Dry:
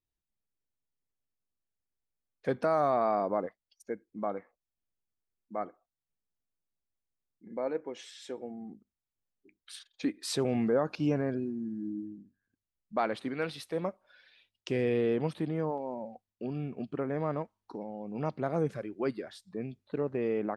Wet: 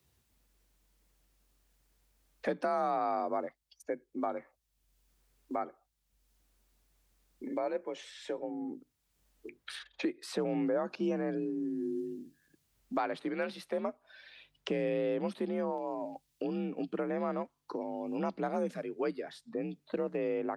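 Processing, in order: frequency shift +47 Hz; wow and flutter 19 cents; three bands compressed up and down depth 70%; trim -2 dB

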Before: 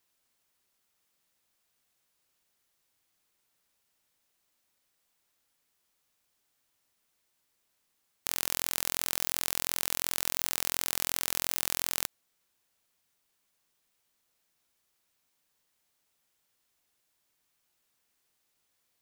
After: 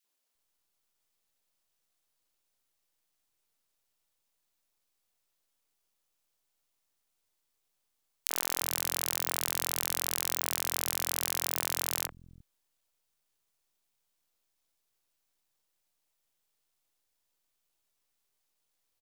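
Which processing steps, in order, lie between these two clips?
half-wave rectifier; three bands offset in time highs, mids, lows 40/350 ms, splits 190/1800 Hz

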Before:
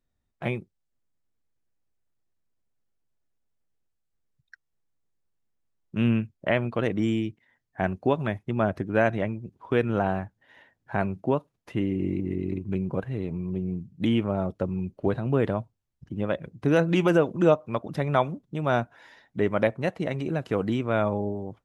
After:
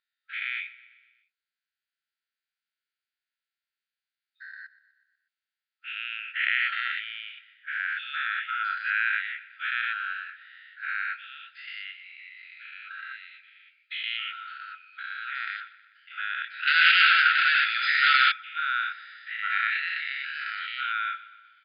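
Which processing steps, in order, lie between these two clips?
every event in the spectrogram widened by 240 ms; feedback delay 123 ms, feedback 59%, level -18.5 dB; 16.67–18.32 s: waveshaping leveller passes 3; FFT band-pass 1.3–5 kHz

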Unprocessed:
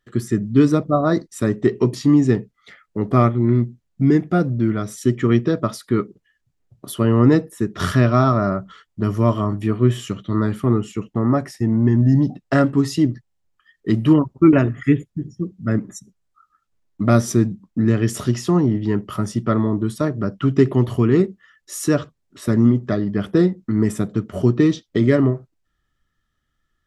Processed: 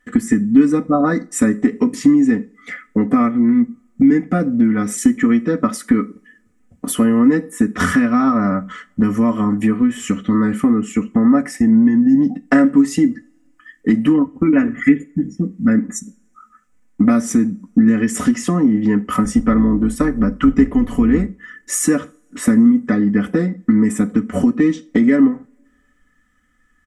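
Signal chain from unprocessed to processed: 19.24–21.27 s: octave divider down 2 oct, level -4 dB; graphic EQ 250/2000/4000/8000 Hz +7/+10/-10/+12 dB; compression 4:1, threshold -21 dBFS, peak gain reduction 15 dB; treble shelf 4.6 kHz -5 dB; comb 4 ms, depth 89%; two-slope reverb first 0.36 s, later 1.9 s, from -27 dB, DRR 15 dB; trim +5.5 dB

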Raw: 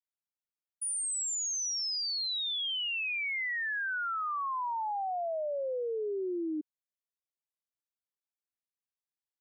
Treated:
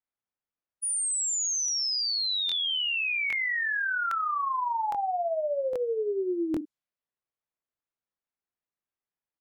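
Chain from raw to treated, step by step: level-controlled noise filter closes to 2 kHz, open at -34.5 dBFS; doubling 41 ms -9.5 dB; crackling interface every 0.81 s, samples 1024, repeat, from 0.85 s; trim +4.5 dB

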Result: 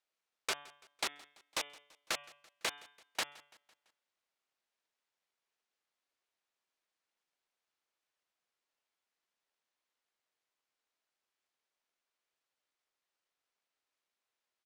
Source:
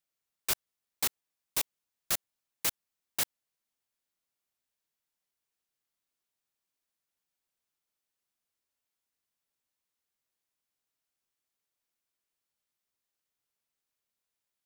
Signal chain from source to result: square wave that keeps the level; tone controls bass -15 dB, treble -2 dB; de-hum 144.5 Hz, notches 25; compression, threshold -29 dBFS, peak gain reduction 6 dB; distance through air 55 m; feedback delay 168 ms, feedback 54%, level -23 dB

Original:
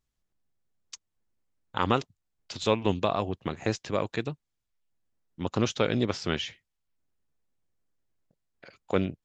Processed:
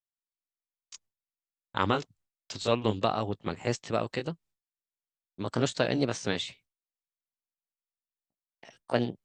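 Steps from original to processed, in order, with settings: pitch bend over the whole clip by +4 st starting unshifted; expander -57 dBFS

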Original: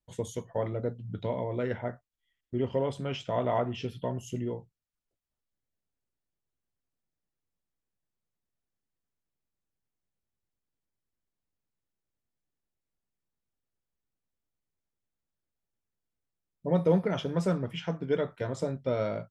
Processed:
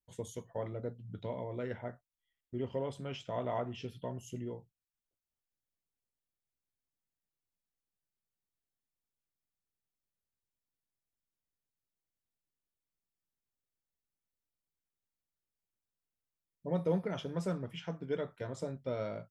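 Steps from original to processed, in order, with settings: treble shelf 8.3 kHz +5.5 dB; trim -7.5 dB

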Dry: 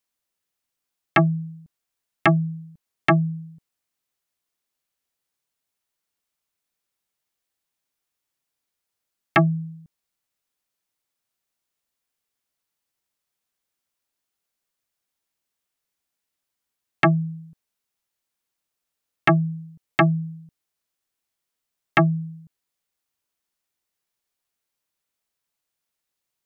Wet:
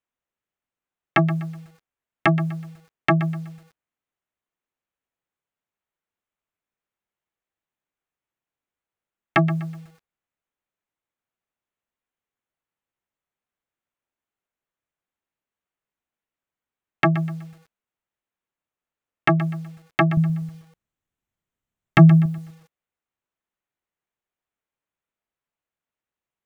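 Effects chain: local Wiener filter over 9 samples; 20.17–22.26 s: tone controls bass +13 dB, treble +6 dB; bit-crushed delay 124 ms, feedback 35%, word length 7-bit, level -14 dB; trim -1 dB

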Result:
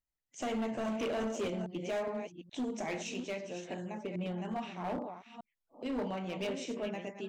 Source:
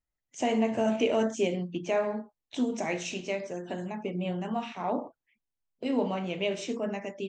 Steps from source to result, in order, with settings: chunks repeated in reverse 416 ms, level -9 dB; hard clipper -25.5 dBFS, distortion -11 dB; trim -5.5 dB

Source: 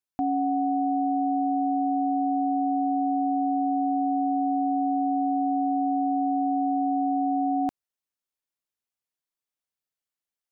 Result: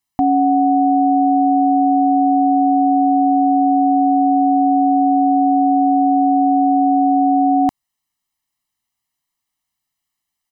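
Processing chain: comb 1 ms, depth 89%; trim +9 dB

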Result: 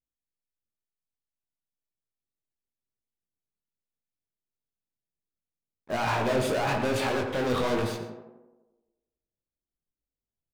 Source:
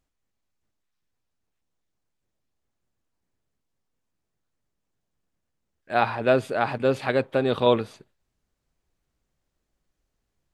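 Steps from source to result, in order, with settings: level-controlled noise filter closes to 700 Hz, open at -21 dBFS; peak limiter -16 dBFS, peak gain reduction 10.5 dB; waveshaping leveller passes 5; chorus 1 Hz, delay 17.5 ms, depth 6.6 ms; tape echo 88 ms, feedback 67%, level -4 dB, low-pass 1.6 kHz; reverberation RT60 0.35 s, pre-delay 108 ms, DRR 14.5 dB; trim -5.5 dB

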